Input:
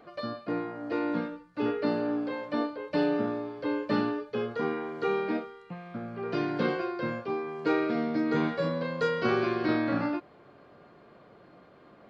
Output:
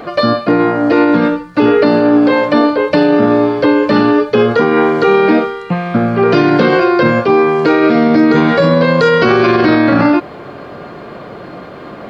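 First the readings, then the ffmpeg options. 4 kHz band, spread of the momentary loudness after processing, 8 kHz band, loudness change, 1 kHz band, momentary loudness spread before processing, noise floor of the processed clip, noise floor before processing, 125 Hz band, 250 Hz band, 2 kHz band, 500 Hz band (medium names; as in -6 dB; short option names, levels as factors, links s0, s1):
+19.5 dB, 21 LU, no reading, +19.5 dB, +20.0 dB, 7 LU, -30 dBFS, -56 dBFS, +20.0 dB, +19.5 dB, +19.5 dB, +20.0 dB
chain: -af "alimiter=level_in=20:limit=0.891:release=50:level=0:latency=1,volume=0.891"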